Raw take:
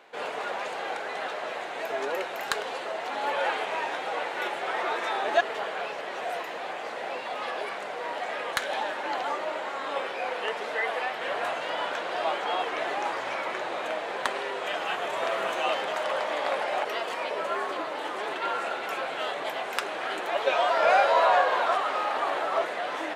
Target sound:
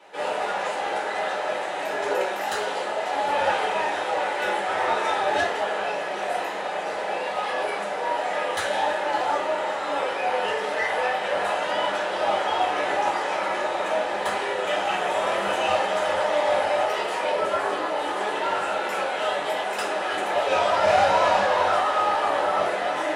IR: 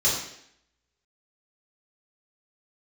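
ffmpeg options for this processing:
-filter_complex "[0:a]asoftclip=type=tanh:threshold=-22dB[a];[1:a]atrim=start_sample=2205,asetrate=66150,aresample=44100[b];[a][b]afir=irnorm=-1:irlink=0,volume=-4dB"

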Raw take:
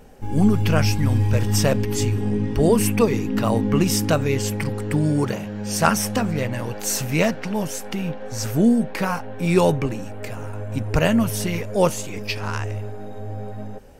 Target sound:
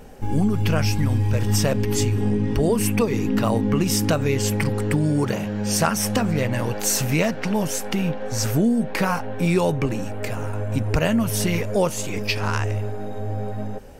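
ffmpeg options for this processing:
-af "acompressor=threshold=-21dB:ratio=4,volume=4dB"

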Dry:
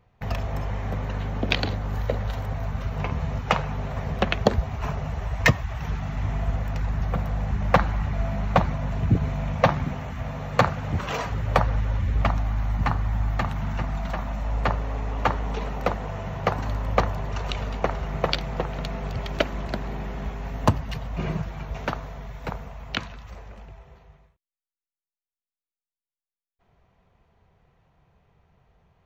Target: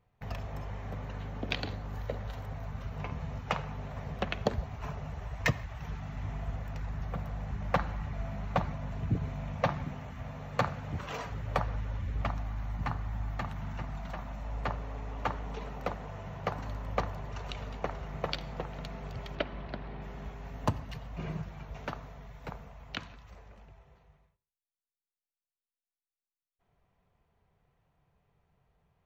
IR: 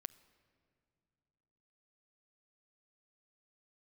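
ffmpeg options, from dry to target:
-filter_complex "[0:a]asettb=1/sr,asplit=3[a][b][c];[a]atrim=end=19.354[d];[b]atrim=start=19.35:end=20.02,asetpts=PTS-STARTPTS,afade=t=in:d=0.004:c=qsin,afade=t=out:st=0.666:d=0.004:c=qsin,lowpass=f=4.3k:w=0.5412,lowpass=f=4.3k:w=1.3066[e];[c]atrim=start=20.016[f];[d][e]acrossfade=d=0.004:c1=hsin:c2=qsin[g];[g][f]acrossfade=d=0.004:c1=qsin:c2=hsin[h];[1:a]atrim=start_sample=2205,afade=t=out:st=0.23:d=0.01,atrim=end_sample=10584[i];[h][i]afir=irnorm=-1:irlink=0,volume=-5.5dB"

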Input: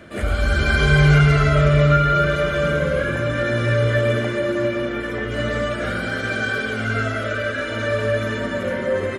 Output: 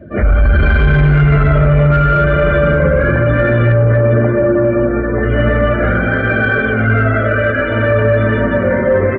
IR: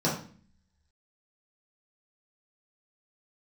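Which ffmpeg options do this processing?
-af "asetnsamples=n=441:p=0,asendcmd='3.72 lowpass f 1300;5.23 lowpass f 2100',lowpass=2.1k,afftdn=nr=21:nf=-38,lowshelf=f=71:g=11,acontrast=46,alimiter=limit=-9dB:level=0:latency=1:release=19,volume=4.5dB"

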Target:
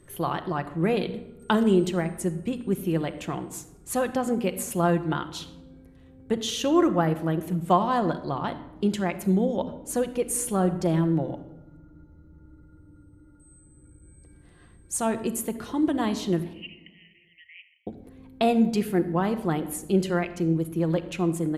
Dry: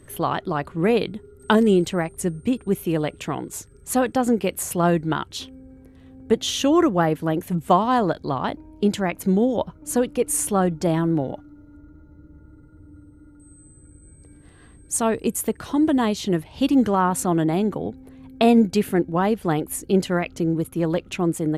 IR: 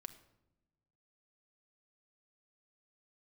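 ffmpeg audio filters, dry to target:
-filter_complex "[0:a]asettb=1/sr,asplit=3[a][b][c];[a]atrim=end=16.534[d];[b]atrim=start=16.53:end=17.87,asetpts=PTS-STARTPTS,afade=t=in:d=0.004:c=qsin,afade=t=out:st=1.336:d=0.004:c=qsin,asuperpass=centerf=2400:order=20:qfactor=2[e];[c]atrim=start=17.866[f];[d][e]acrossfade=d=0.004:c1=hsin:c2=qsin[g];[g][f]acrossfade=d=0.004:c1=qsin:c2=hsin[h];[1:a]atrim=start_sample=2205,asetrate=39249,aresample=44100[i];[h][i]afir=irnorm=-1:irlink=0"

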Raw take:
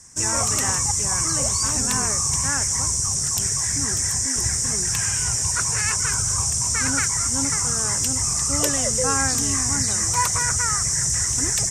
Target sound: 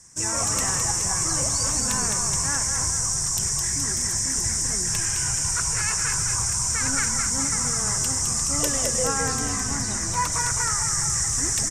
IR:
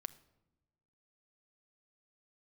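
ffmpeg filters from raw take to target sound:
-filter_complex "[0:a]asettb=1/sr,asplit=3[a][b][c];[a]atrim=end=9.064[d];[b]atrim=start=9.06:end=10.32,asetpts=PTS-STARTPTS,afade=t=in:d=0.004:c=qsin,afade=t=out:st=1.256:d=0.004:c=qsin,highshelf=f=5.9k:g=-6.5[e];[c]atrim=start=10.316[f];[d][e]acrossfade=d=0.004:c1=hsin:c2=qsin[g];[g][f]acrossfade=d=0.004:c1=qsin:c2=hsin,asplit=9[h][i][j][k][l][m][n][o][p];[i]adelay=211,afreqshift=-36,volume=-5.5dB[q];[j]adelay=422,afreqshift=-72,volume=-10.4dB[r];[k]adelay=633,afreqshift=-108,volume=-15.3dB[s];[l]adelay=844,afreqshift=-144,volume=-20.1dB[t];[m]adelay=1055,afreqshift=-180,volume=-25dB[u];[n]adelay=1266,afreqshift=-216,volume=-29.9dB[v];[o]adelay=1477,afreqshift=-252,volume=-34.8dB[w];[p]adelay=1688,afreqshift=-288,volume=-39.7dB[x];[h][q][r][s][t][u][v][w][x]amix=inputs=9:normalize=0[y];[1:a]atrim=start_sample=2205[z];[y][z]afir=irnorm=-1:irlink=0"

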